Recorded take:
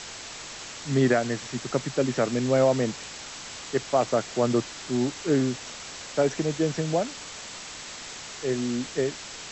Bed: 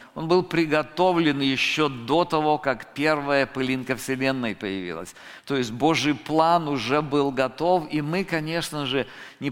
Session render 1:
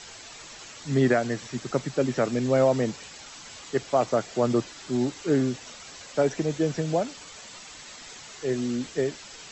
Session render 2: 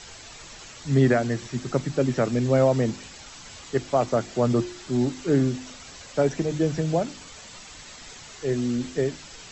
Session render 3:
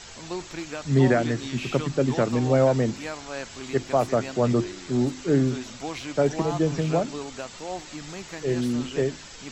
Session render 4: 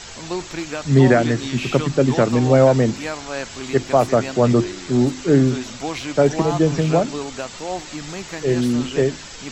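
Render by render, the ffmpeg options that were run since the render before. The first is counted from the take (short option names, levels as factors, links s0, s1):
-af "afftdn=nr=8:nf=-40"
-af "lowshelf=f=140:g=11,bandreject=f=51.09:t=h:w=4,bandreject=f=102.18:t=h:w=4,bandreject=f=153.27:t=h:w=4,bandreject=f=204.36:t=h:w=4,bandreject=f=255.45:t=h:w=4,bandreject=f=306.54:t=h:w=4,bandreject=f=357.63:t=h:w=4"
-filter_complex "[1:a]volume=0.211[s0];[0:a][s0]amix=inputs=2:normalize=0"
-af "volume=2.11,alimiter=limit=0.794:level=0:latency=1"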